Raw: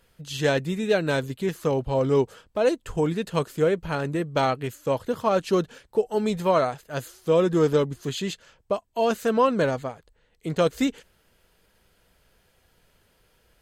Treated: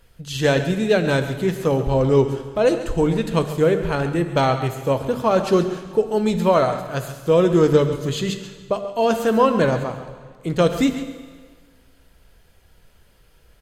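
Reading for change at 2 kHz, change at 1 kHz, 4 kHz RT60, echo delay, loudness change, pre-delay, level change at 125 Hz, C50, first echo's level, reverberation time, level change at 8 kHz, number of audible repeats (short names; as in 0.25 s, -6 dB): +4.5 dB, +4.5 dB, 1.5 s, 0.137 s, +5.0 dB, 6 ms, +7.0 dB, 8.5 dB, -13.0 dB, 1.6 s, +4.0 dB, 1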